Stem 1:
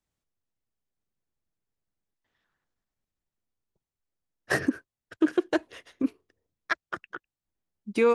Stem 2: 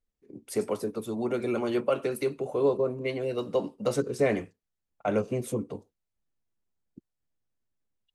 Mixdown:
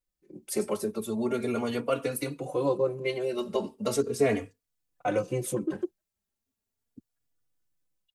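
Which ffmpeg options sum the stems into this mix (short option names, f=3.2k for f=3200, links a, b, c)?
-filter_complex "[0:a]lowpass=2.8k,acrossover=split=590[a][b];[a]aeval=exprs='val(0)*(1-1/2+1/2*cos(2*PI*4.8*n/s))':c=same[c];[b]aeval=exprs='val(0)*(1-1/2-1/2*cos(2*PI*4.8*n/s))':c=same[d];[c][d]amix=inputs=2:normalize=0,adelay=450,volume=-4dB[e];[1:a]highshelf=f=4.7k:g=7.5,dynaudnorm=f=190:g=3:m=4dB,volume=-1dB,asplit=2[f][g];[g]apad=whole_len=379253[h];[e][h]sidechaingate=range=-57dB:threshold=-46dB:ratio=16:detection=peak[i];[i][f]amix=inputs=2:normalize=0,asplit=2[j][k];[k]adelay=3.5,afreqshift=0.38[l];[j][l]amix=inputs=2:normalize=1"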